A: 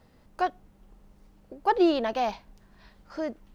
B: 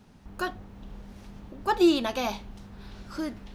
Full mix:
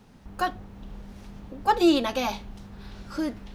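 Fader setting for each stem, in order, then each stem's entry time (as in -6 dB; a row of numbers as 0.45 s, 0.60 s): -4.0 dB, +1.5 dB; 0.00 s, 0.00 s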